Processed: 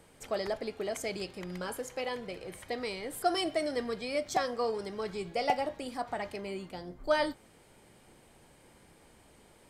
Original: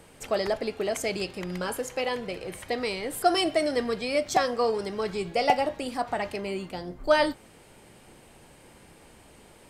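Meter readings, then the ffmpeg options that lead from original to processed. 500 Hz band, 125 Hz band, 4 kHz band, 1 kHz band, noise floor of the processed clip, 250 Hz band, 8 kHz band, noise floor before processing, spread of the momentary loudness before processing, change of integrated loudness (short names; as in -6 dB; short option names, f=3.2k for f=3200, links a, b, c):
-6.5 dB, -6.5 dB, -6.5 dB, -6.5 dB, -60 dBFS, -6.5 dB, -6.5 dB, -54 dBFS, 9 LU, -6.5 dB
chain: -af "bandreject=f=2.7k:w=17,volume=-6.5dB"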